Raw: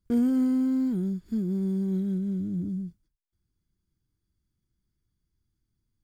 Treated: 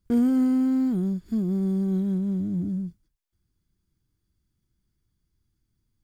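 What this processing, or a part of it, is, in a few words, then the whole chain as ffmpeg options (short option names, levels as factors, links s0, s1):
parallel distortion: -filter_complex "[0:a]asplit=2[s0][s1];[s1]asoftclip=type=hard:threshold=0.0224,volume=0.211[s2];[s0][s2]amix=inputs=2:normalize=0,volume=1.26"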